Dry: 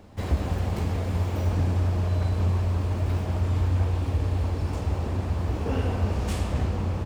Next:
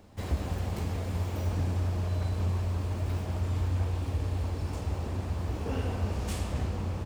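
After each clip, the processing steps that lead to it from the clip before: high shelf 4400 Hz +5.5 dB; gain -5.5 dB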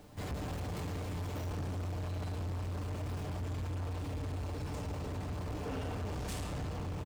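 comb 6.8 ms, depth 43%; bit-crush 11-bit; soft clip -34.5 dBFS, distortion -10 dB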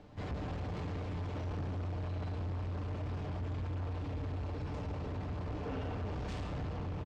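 air absorption 160 m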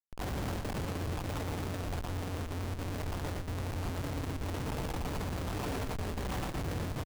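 random spectral dropouts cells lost 27%; Schmitt trigger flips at -46 dBFS; echo 0.119 s -6 dB; gain +3.5 dB

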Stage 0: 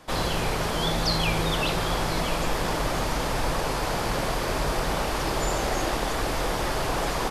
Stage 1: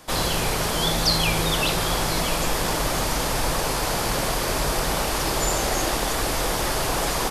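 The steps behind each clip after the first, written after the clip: high shelf 5200 Hz +10.5 dB; gain +1.5 dB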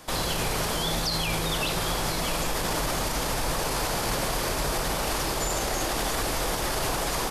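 limiter -18 dBFS, peak gain reduction 10 dB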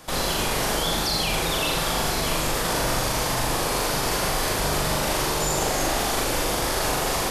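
flutter echo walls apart 7 m, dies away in 0.77 s; gain +1 dB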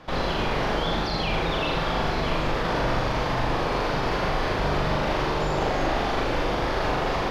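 air absorption 270 m; gain +1.5 dB

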